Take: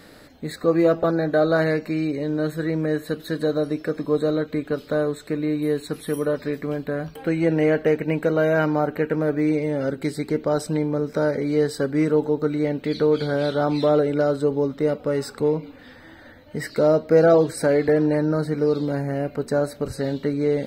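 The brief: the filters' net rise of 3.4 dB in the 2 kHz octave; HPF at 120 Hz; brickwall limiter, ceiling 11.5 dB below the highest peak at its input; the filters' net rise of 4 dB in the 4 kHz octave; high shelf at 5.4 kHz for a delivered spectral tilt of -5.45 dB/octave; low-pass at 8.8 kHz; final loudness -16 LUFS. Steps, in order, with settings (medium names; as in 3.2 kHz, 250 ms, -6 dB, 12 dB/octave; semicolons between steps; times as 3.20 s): high-pass 120 Hz; low-pass 8.8 kHz; peaking EQ 2 kHz +4 dB; peaking EQ 4 kHz +5 dB; treble shelf 5.4 kHz -3.5 dB; trim +11 dB; peak limiter -5.5 dBFS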